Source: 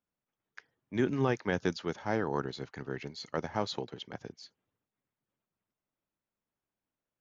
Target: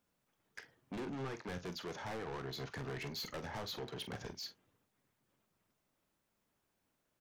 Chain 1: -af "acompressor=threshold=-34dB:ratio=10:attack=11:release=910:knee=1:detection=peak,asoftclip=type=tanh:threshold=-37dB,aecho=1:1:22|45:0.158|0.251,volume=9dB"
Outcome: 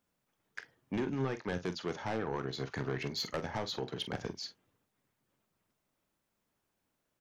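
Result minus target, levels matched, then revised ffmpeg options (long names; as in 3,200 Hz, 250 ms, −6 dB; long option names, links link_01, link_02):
soft clipping: distortion −7 dB
-af "acompressor=threshold=-34dB:ratio=10:attack=11:release=910:knee=1:detection=peak,asoftclip=type=tanh:threshold=-48.5dB,aecho=1:1:22|45:0.158|0.251,volume=9dB"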